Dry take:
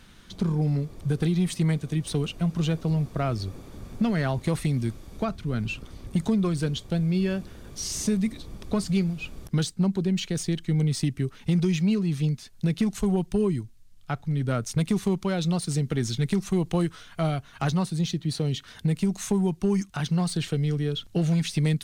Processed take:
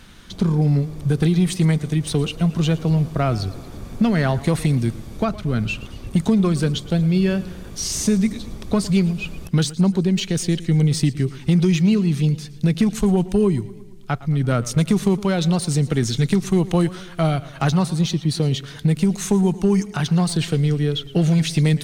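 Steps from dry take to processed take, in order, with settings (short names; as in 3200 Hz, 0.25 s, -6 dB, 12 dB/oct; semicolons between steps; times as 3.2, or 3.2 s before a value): warbling echo 0.114 s, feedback 57%, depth 108 cents, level -18 dB; gain +6.5 dB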